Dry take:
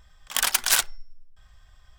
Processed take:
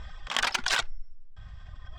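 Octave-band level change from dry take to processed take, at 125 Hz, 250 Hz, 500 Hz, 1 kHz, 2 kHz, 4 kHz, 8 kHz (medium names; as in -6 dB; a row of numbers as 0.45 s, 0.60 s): no reading, +2.0 dB, +0.5 dB, 0.0 dB, -0.5 dB, -3.5 dB, -13.0 dB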